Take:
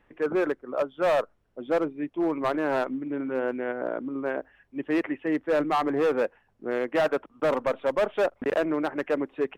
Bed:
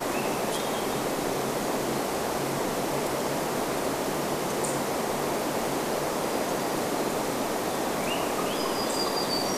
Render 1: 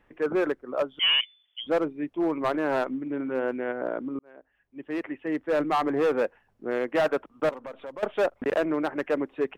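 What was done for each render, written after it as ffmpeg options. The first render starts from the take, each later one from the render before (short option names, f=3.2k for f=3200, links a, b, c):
-filter_complex "[0:a]asettb=1/sr,asplit=3[a][b][c];[a]atrim=end=0.994[d];[b]atrim=start=0.99:end=1.67,asetpts=PTS-STARTPTS,afade=t=in:d=0.004:c=qsin,afade=t=out:st=0.676:d=0.004:c=qsin,lowpass=f=3k:t=q:w=0.5098,lowpass=f=3k:t=q:w=0.6013,lowpass=f=3k:t=q:w=0.9,lowpass=f=3k:t=q:w=2.563,afreqshift=-3500[e];[c]atrim=start=1.666[f];[d][e]acrossfade=d=0.004:c1=hsin:c2=qsin[g];[g][f]acrossfade=d=0.004:c1=qsin:c2=hsin,asettb=1/sr,asplit=3[h][i][j];[h]atrim=end=7.494[k];[i]atrim=start=7.49:end=8.03,asetpts=PTS-STARTPTS,afade=t=in:d=0.004:c=qsin,afade=t=out:st=0.536:d=0.004:c=qsin,acompressor=threshold=-37dB:ratio=5:attack=3.2:release=140:knee=1:detection=peak[l];[j]atrim=start=8.026[m];[k][l]acrossfade=d=0.004:c1=hsin:c2=qsin[n];[n][m]acrossfade=d=0.004:c1=qsin:c2=hsin,asplit=2[o][p];[o]atrim=end=4.19,asetpts=PTS-STARTPTS,afade=t=out:st=4.186:d=0.004:c=hsin[q];[p]atrim=start=4.19,asetpts=PTS-STARTPTS,afade=t=in:d=1.51[r];[q][r]concat=n=2:v=0:a=1"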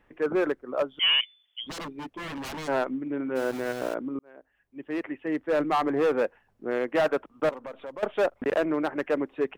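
-filter_complex "[0:a]asplit=3[a][b][c];[a]afade=t=out:st=1.68:d=0.02[d];[b]aeval=exprs='0.0282*(abs(mod(val(0)/0.0282+3,4)-2)-1)':c=same,afade=t=in:st=1.68:d=0.02,afade=t=out:st=2.67:d=0.02[e];[c]afade=t=in:st=2.67:d=0.02[f];[d][e][f]amix=inputs=3:normalize=0,asplit=3[g][h][i];[g]afade=t=out:st=3.35:d=0.02[j];[h]aeval=exprs='val(0)*gte(abs(val(0)),0.0188)':c=same,afade=t=in:st=3.35:d=0.02,afade=t=out:st=3.93:d=0.02[k];[i]afade=t=in:st=3.93:d=0.02[l];[j][k][l]amix=inputs=3:normalize=0"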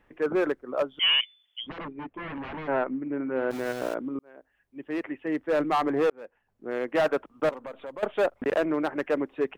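-filter_complex "[0:a]asettb=1/sr,asplit=3[a][b][c];[a]atrim=end=1.664[d];[b]atrim=start=1.66:end=3.51,asetpts=PTS-STARTPTS,afade=t=in:d=0.004:c=qsin,afade=t=out:st=1.846:d=0.004:c=qsin,lowpass=f=2.5k:w=0.5412,lowpass=f=2.5k:w=1.3066[e];[c]atrim=start=3.506[f];[d][e]acrossfade=d=0.004:c1=hsin:c2=qsin[g];[g][f]acrossfade=d=0.004:c1=qsin:c2=hsin,asettb=1/sr,asplit=3[h][i][j];[h]atrim=end=7.604[k];[i]atrim=start=7.6:end=8.29,asetpts=PTS-STARTPTS,afade=t=in:d=0.004:c=qsin,afade=t=out:st=0.686:d=0.004:c=qsin,bandreject=f=5.5k:w=5.1[l];[j]atrim=start=8.286[m];[k][l]acrossfade=d=0.004:c1=hsin:c2=qsin[n];[n][m]acrossfade=d=0.004:c1=qsin:c2=hsin,asplit=2[o][p];[o]atrim=end=6.1,asetpts=PTS-STARTPTS,afade=t=out:st=6.096:d=0.004:c=hsin[q];[p]atrim=start=6.1,asetpts=PTS-STARTPTS,afade=t=in:d=0.9[r];[q][r]concat=n=2:v=0:a=1"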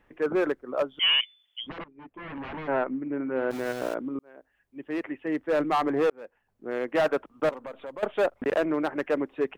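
-filter_complex "[0:a]asplit=2[a][b];[a]atrim=end=1.84,asetpts=PTS-STARTPTS,afade=t=out:st=1.836:d=0.004:c=hsin:silence=0.0794328[c];[b]atrim=start=1.84,asetpts=PTS-STARTPTS,afade=t=in:d=0.62:silence=0.0794328[d];[c][d]concat=n=2:v=0:a=1"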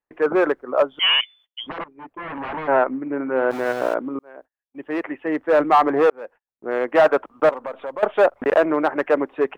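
-af "agate=range=-33dB:threshold=-53dB:ratio=16:detection=peak,equalizer=f=920:w=0.44:g=11"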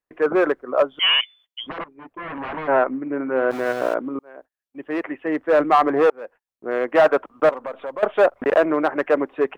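-af "bandreject=f=870:w=13"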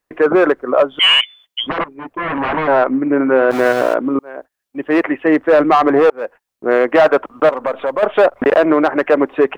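-filter_complex "[0:a]asplit=2[a][b];[b]acontrast=72,volume=2dB[c];[a][c]amix=inputs=2:normalize=0,alimiter=limit=-4dB:level=0:latency=1:release=132"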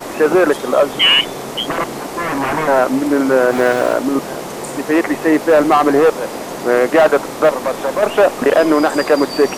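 -filter_complex "[1:a]volume=2dB[a];[0:a][a]amix=inputs=2:normalize=0"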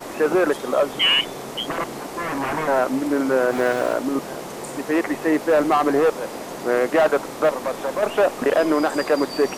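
-af "volume=-6.5dB"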